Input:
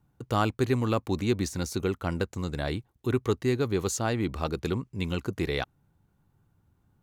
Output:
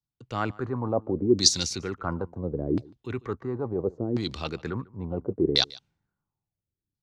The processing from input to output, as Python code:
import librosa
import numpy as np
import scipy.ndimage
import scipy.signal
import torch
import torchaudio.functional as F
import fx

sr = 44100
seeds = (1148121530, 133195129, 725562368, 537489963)

p1 = fx.over_compress(x, sr, threshold_db=-29.0, ratio=-0.5)
p2 = x + (p1 * librosa.db_to_amplitude(-1.5))
p3 = fx.high_shelf_res(p2, sr, hz=3800.0, db=12.5, q=1.5)
p4 = fx.filter_lfo_lowpass(p3, sr, shape='saw_down', hz=0.72, low_hz=300.0, high_hz=4800.0, q=3.2)
p5 = fx.peak_eq(p4, sr, hz=67.0, db=-4.0, octaves=0.75)
p6 = p5 + fx.echo_single(p5, sr, ms=147, db=-21.5, dry=0)
p7 = fx.band_widen(p6, sr, depth_pct=70)
y = p7 * librosa.db_to_amplitude(-6.5)